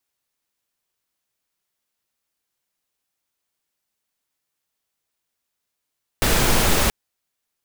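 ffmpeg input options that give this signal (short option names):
-f lavfi -i "anoisesrc=c=pink:a=0.684:d=0.68:r=44100:seed=1"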